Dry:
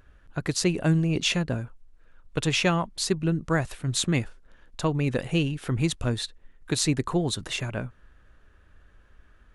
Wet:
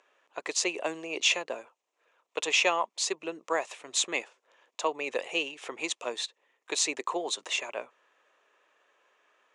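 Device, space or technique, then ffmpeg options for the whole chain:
phone speaker on a table: -af "highpass=f=450:w=0.5412,highpass=f=450:w=1.3066,equalizer=f=1000:t=q:w=4:g=4,equalizer=f=1500:t=q:w=4:g=-9,equalizer=f=2500:t=q:w=4:g=4,equalizer=f=4500:t=q:w=4:g=-4,equalizer=f=6800:t=q:w=4:g=4,lowpass=f=7900:w=0.5412,lowpass=f=7900:w=1.3066"

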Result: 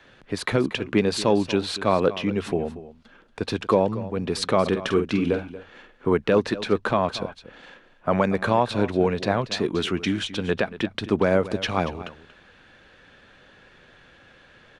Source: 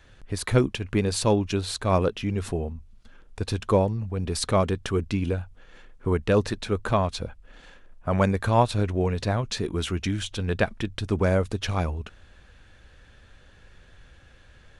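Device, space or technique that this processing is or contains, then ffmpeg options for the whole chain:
DJ mixer with the lows and highs turned down: -filter_complex "[0:a]asplit=3[s0][s1][s2];[s0]afade=t=out:st=4.65:d=0.02[s3];[s1]asplit=2[s4][s5];[s5]adelay=47,volume=0.398[s6];[s4][s6]amix=inputs=2:normalize=0,afade=t=in:st=4.65:d=0.02,afade=t=out:st=6.09:d=0.02[s7];[s2]afade=t=in:st=6.09:d=0.02[s8];[s3][s7][s8]amix=inputs=3:normalize=0,acrossover=split=150 4800:gain=0.112 1 0.251[s9][s10][s11];[s9][s10][s11]amix=inputs=3:normalize=0,alimiter=limit=0.211:level=0:latency=1:release=146,aecho=1:1:234:0.168,volume=1.88"

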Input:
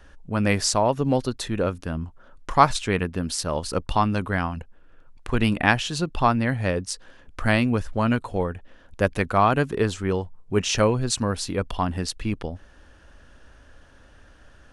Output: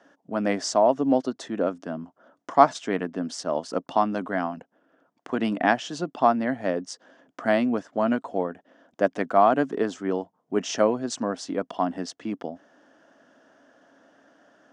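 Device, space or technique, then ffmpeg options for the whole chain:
television speaker: -af "highpass=f=190:w=0.5412,highpass=f=190:w=1.3066,equalizer=f=280:t=q:w=4:g=7,equalizer=f=670:t=q:w=4:g=10,equalizer=f=2500:t=q:w=4:g=-8,equalizer=f=4100:t=q:w=4:g=-8,lowpass=f=6900:w=0.5412,lowpass=f=6900:w=1.3066,volume=0.668"

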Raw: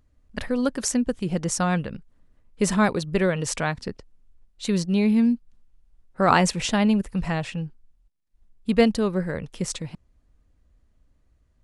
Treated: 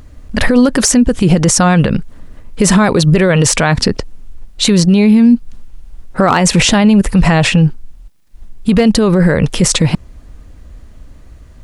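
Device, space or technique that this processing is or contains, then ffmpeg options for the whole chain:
loud club master: -af "acompressor=threshold=0.0708:ratio=3,asoftclip=type=hard:threshold=0.168,alimiter=level_in=22.4:limit=0.891:release=50:level=0:latency=1,volume=0.891"

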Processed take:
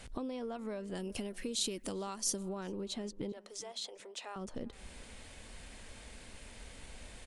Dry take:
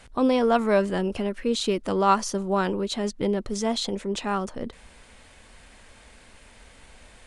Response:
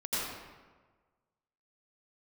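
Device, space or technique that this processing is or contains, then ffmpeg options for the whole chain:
serial compression, leveller first: -filter_complex "[0:a]acompressor=threshold=0.0398:ratio=2,acompressor=threshold=0.0126:ratio=5,asettb=1/sr,asplit=3[s0][s1][s2];[s0]atrim=end=0.954[s3];[s1]atrim=start=0.95:end=2.49,asetpts=PTS-STARTPTS,afade=t=in:d=0.004:c=qsin,afade=t=out:st=1.536:d=0.004:c=qsin,aemphasis=mode=production:type=75kf[s4];[s2]atrim=start=2.486[s5];[s3][s4]acrossfade=d=0.004:c1=hsin:c2=qsin[s6];[s6][s5]acrossfade=d=0.004:c1=qsin:c2=hsin,asettb=1/sr,asplit=3[s7][s8][s9];[s7]atrim=end=3.324[s10];[s8]atrim=start=3.32:end=4.36,asetpts=PTS-STARTPTS,afade=t=in:d=0.004:c=qsin,afade=t=out:st=1.036:d=0.004:c=qsin,highpass=f=510:w=0.5412,highpass=f=510:w=1.3066[s11];[s9]atrim=start=4.356[s12];[s10][s11]acrossfade=d=0.004:c1=hsin:c2=qsin[s13];[s13][s12]acrossfade=d=0.004:c1=qsin:c2=hsin,equalizer=f=1200:w=0.68:g=-5.5,asplit=2[s14][s15];[s15]adelay=394,lowpass=f=2300:p=1,volume=0.0841,asplit=2[s16][s17];[s17]adelay=394,lowpass=f=2300:p=1,volume=0.39,asplit=2[s18][s19];[s19]adelay=394,lowpass=f=2300:p=1,volume=0.39[s20];[s14][s16][s18][s20]amix=inputs=4:normalize=0,volume=1.12"

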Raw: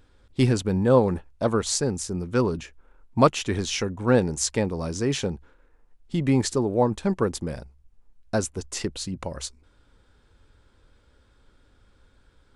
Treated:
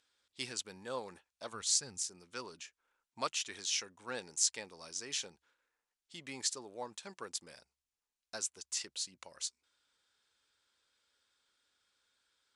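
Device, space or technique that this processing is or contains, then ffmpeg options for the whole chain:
piezo pickup straight into a mixer: -filter_complex "[0:a]lowpass=6800,aderivative,asplit=3[s0][s1][s2];[s0]afade=t=out:st=1.52:d=0.02[s3];[s1]asubboost=boost=7.5:cutoff=170,afade=t=in:st=1.52:d=0.02,afade=t=out:st=2.01:d=0.02[s4];[s2]afade=t=in:st=2.01:d=0.02[s5];[s3][s4][s5]amix=inputs=3:normalize=0"

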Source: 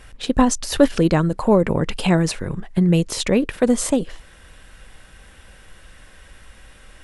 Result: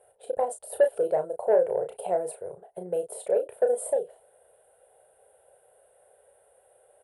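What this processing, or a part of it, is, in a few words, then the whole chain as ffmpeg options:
intercom: -filter_complex "[0:a]highpass=440,lowpass=4400,firequalizer=gain_entry='entry(110,0);entry(260,-27);entry(420,3);entry(680,4);entry(1200,-29);entry(3300,-24);entry(5900,-28);entry(9200,14)':delay=0.05:min_phase=1,equalizer=f=1400:t=o:w=0.48:g=12,asoftclip=type=tanh:threshold=0.422,asplit=2[s0][s1];[s1]adelay=33,volume=0.447[s2];[s0][s2]amix=inputs=2:normalize=0,volume=0.631"

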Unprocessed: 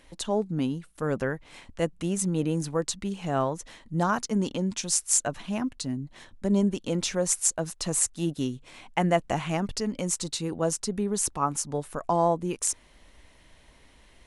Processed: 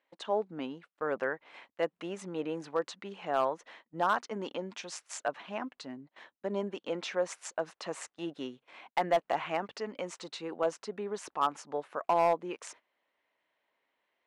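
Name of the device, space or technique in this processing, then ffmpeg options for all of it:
walkie-talkie: -af "highpass=500,lowpass=2500,asoftclip=type=hard:threshold=0.112,agate=range=0.141:threshold=0.00224:ratio=16:detection=peak"

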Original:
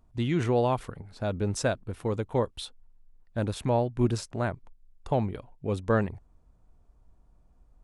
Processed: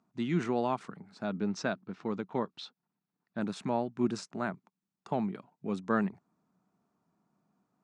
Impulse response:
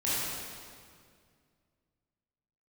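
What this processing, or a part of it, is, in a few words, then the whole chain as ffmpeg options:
television speaker: -filter_complex "[0:a]highpass=f=170:w=0.5412,highpass=f=170:w=1.3066,equalizer=f=190:t=q:w=4:g=8,equalizer=f=520:t=q:w=4:g=-8,equalizer=f=1300:t=q:w=4:g=4,equalizer=f=3200:t=q:w=4:g=-4,lowpass=f=7700:w=0.5412,lowpass=f=7700:w=1.3066,asettb=1/sr,asplit=3[s0][s1][s2];[s0]atrim=end=1.244[s3];[s1]atrim=start=1.24:end=3.41,asetpts=PTS-STARTPTS,afade=t=in:d=0.004:c=qsin,afade=t=out:st=2.166:d=0.004:c=qsin,lowpass=f=5800:w=0.5412,lowpass=f=5800:w=1.3066[s4];[s2]atrim=start=3.406[s5];[s3][s4]acrossfade=d=0.004:c1=hsin:c2=qsin[s6];[s6][s5]acrossfade=d=0.004:c1=qsin:c2=hsin,volume=0.668"

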